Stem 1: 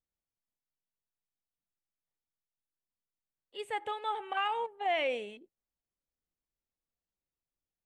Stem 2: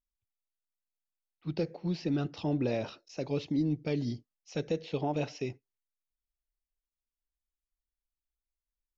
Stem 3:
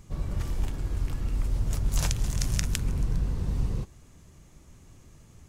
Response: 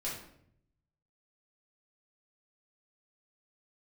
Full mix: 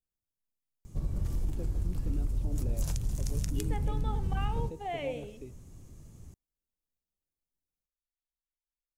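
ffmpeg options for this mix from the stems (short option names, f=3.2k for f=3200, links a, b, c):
-filter_complex "[0:a]volume=-0.5dB,asplit=2[a][b];[b]volume=-12.5dB[c];[1:a]lowpass=3.3k,volume=-9.5dB[d];[2:a]acompressor=threshold=-29dB:ratio=6,adelay=850,volume=2.5dB[e];[3:a]atrim=start_sample=2205[f];[c][f]afir=irnorm=-1:irlink=0[g];[a][d][e][g]amix=inputs=4:normalize=0,equalizer=f=2k:w=0.35:g=-11"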